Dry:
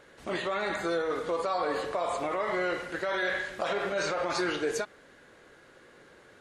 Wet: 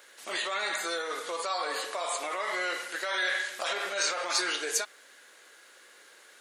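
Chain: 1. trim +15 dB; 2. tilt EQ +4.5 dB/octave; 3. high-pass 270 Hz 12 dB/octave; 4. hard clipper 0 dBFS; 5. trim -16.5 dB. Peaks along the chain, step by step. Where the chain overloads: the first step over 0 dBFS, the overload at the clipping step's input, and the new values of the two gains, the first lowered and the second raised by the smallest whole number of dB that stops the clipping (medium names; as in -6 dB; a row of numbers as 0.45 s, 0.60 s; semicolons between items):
-3.0 dBFS, +3.5 dBFS, +3.0 dBFS, 0.0 dBFS, -16.5 dBFS; step 2, 3.0 dB; step 1 +12 dB, step 5 -13.5 dB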